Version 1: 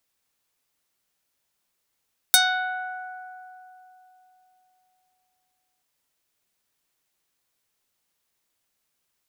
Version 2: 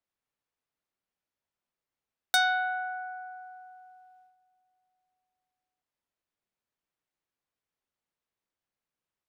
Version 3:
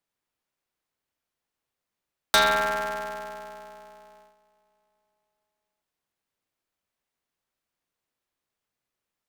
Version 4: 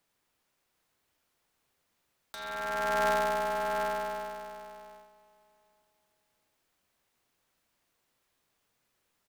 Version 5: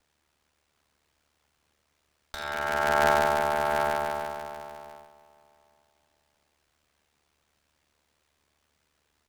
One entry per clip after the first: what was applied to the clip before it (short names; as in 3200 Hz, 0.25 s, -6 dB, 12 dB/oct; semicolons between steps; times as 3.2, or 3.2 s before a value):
LPF 1700 Hz 6 dB/oct; gate -60 dBFS, range -8 dB
polarity switched at an audio rate 110 Hz; gain +4.5 dB
negative-ratio compressor -34 dBFS, ratio -1; on a send: echo 0.741 s -6.5 dB; on the sum: gain +2 dB
ring modulator 37 Hz; running maximum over 3 samples; gain +8 dB